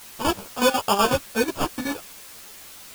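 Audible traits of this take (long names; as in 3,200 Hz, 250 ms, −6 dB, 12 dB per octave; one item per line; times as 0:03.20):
aliases and images of a low sample rate 2,000 Hz, jitter 0%
chopped level 8.1 Hz, depth 65%, duty 55%
a quantiser's noise floor 8 bits, dither triangular
a shimmering, thickened sound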